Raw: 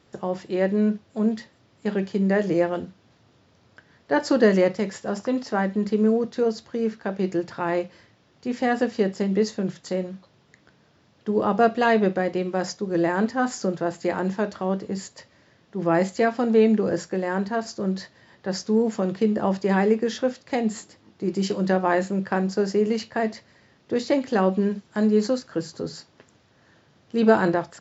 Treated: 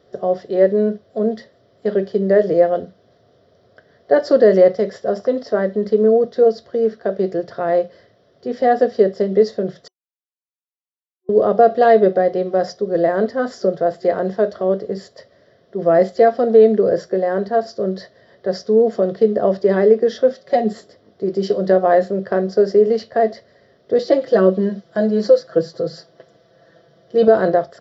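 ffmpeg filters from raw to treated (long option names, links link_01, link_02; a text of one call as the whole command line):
ffmpeg -i in.wav -filter_complex "[0:a]asettb=1/sr,asplit=3[link_01][link_02][link_03];[link_01]atrim=end=20.304[link_04];[link_02]atrim=start=20.3:end=20.73,asetpts=PTS-STARTPTS,afade=type=in:duration=0.004:curve=qsin,afade=type=out:start_time=0.426:duration=0.004:curve=qsin,aecho=1:1:5.3:0.65,atrim=end_sample=18963[link_05];[link_03]atrim=start=20.726[link_06];[link_04][link_05]acrossfade=duration=0.004:curve1=hsin:curve2=qsin[link_07];[link_07][link_06]acrossfade=duration=0.004:curve1=qsin:curve2=hsin,asettb=1/sr,asplit=3[link_08][link_09][link_10];[link_08]atrim=end=23.984[link_11];[link_09]atrim=start=23.98:end=27.28,asetpts=PTS-STARTPTS,afade=type=in:duration=0.004:curve=qsin,afade=type=out:start_time=3.296:duration=0.004:curve=qsin,aecho=1:1:6:0.81,atrim=end_sample=145530[link_12];[link_10]atrim=start=27.276[link_13];[link_11][link_12]acrossfade=duration=0.004:curve1=hsin:curve2=qsin[link_14];[link_14][link_13]acrossfade=duration=0.004:curve1=qsin:curve2=hsin,asplit=3[link_15][link_16][link_17];[link_15]atrim=end=9.88,asetpts=PTS-STARTPTS,afade=type=out:start_time=9.876:duration=0.004:curve=hsin[link_18];[link_16]atrim=start=9.88:end=11.29,asetpts=PTS-STARTPTS,volume=0[link_19];[link_17]atrim=start=11.29,asetpts=PTS-STARTPTS,afade=type=in:duration=0.004:curve=hsin[link_20];[link_18][link_19][link_20]concat=n=3:v=0:a=1,superequalizer=7b=3.16:8b=3.55:9b=0.562:12b=0.355:15b=0.251,alimiter=level_in=1dB:limit=-1dB:release=50:level=0:latency=1,volume=-1dB" out.wav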